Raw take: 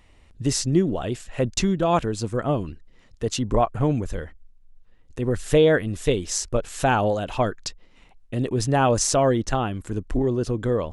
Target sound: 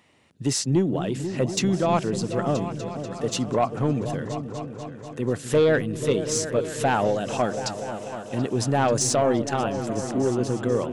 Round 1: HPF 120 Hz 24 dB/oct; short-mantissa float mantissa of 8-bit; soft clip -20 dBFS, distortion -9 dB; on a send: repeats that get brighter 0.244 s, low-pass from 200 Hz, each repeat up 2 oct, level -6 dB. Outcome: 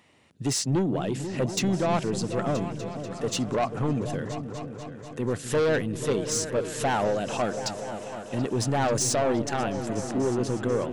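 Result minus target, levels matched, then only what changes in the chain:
soft clip: distortion +8 dB
change: soft clip -12 dBFS, distortion -16 dB

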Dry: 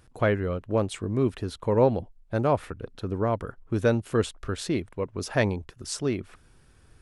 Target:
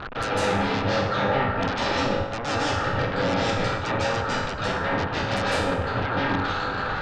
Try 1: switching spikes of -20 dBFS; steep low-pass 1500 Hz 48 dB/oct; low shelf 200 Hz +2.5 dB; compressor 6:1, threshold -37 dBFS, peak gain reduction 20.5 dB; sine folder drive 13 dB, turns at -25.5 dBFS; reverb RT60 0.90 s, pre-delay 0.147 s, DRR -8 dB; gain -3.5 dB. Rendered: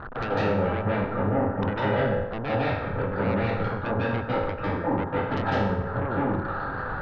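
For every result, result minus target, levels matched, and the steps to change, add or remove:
compressor: peak gain reduction +6.5 dB; switching spikes: distortion -7 dB
change: compressor 6:1, threshold -29 dBFS, peak gain reduction 14 dB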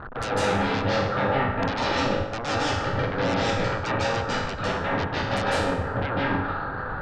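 switching spikes: distortion -7 dB
change: switching spikes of -12.5 dBFS

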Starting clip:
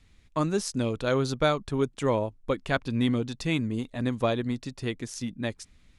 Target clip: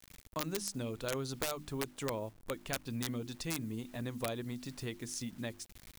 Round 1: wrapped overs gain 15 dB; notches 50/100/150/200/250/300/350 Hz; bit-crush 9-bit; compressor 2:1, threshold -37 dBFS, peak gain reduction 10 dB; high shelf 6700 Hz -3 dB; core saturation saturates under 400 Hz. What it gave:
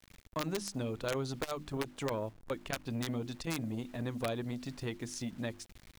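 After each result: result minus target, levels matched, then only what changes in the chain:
8000 Hz band -4.5 dB; compressor: peak gain reduction -3.5 dB
change: high shelf 6700 Hz +7.5 dB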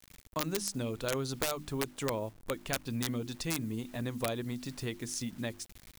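compressor: peak gain reduction -3.5 dB
change: compressor 2:1, threshold -44 dBFS, peak gain reduction 13.5 dB

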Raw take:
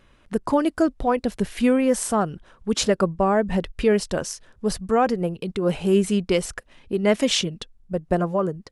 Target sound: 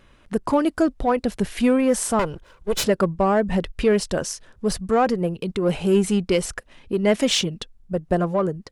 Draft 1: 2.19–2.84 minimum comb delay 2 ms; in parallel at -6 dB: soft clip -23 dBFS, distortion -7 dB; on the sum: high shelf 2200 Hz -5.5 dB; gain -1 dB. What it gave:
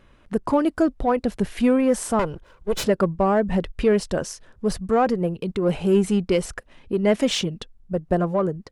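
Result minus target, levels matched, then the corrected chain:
4000 Hz band -3.5 dB
2.19–2.84 minimum comb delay 2 ms; in parallel at -6 dB: soft clip -23 dBFS, distortion -7 dB; on the sum: gain -1 dB

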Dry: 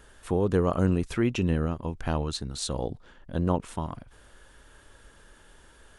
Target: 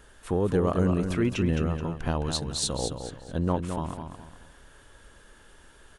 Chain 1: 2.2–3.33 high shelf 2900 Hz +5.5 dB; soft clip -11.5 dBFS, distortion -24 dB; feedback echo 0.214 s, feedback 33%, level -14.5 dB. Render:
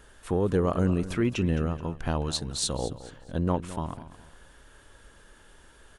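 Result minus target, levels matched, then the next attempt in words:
echo-to-direct -7.5 dB
2.2–3.33 high shelf 2900 Hz +5.5 dB; soft clip -11.5 dBFS, distortion -24 dB; feedback echo 0.214 s, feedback 33%, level -7 dB

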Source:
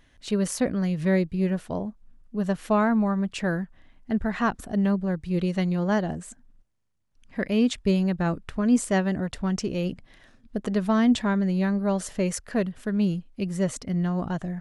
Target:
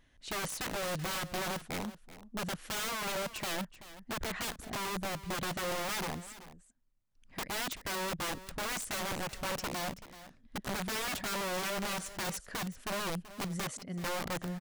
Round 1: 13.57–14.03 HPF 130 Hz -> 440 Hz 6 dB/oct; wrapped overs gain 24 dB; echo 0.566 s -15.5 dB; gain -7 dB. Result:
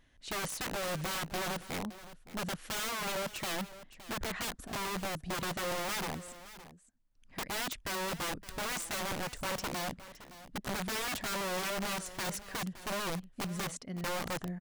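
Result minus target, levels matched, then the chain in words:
echo 0.184 s late
13.57–14.03 HPF 130 Hz -> 440 Hz 6 dB/oct; wrapped overs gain 24 dB; echo 0.382 s -15.5 dB; gain -7 dB

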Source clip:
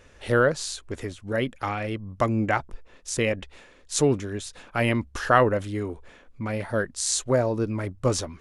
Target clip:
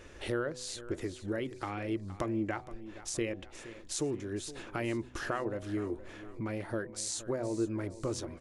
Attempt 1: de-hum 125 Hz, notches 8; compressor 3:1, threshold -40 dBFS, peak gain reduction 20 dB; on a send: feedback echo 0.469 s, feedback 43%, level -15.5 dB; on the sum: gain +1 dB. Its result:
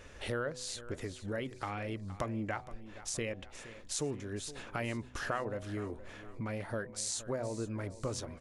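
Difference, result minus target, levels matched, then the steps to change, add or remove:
250 Hz band -3.0 dB
add after compressor: bell 340 Hz +11 dB 0.31 oct

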